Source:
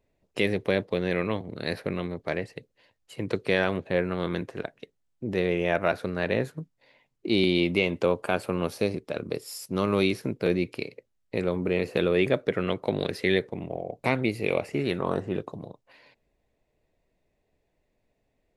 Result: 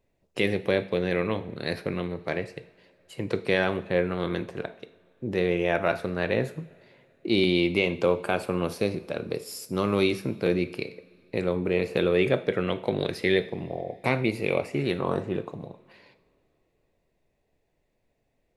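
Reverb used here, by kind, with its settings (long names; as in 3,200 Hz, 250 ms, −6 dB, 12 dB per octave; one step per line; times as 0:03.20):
coupled-rooms reverb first 0.5 s, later 2.9 s, from −19 dB, DRR 10.5 dB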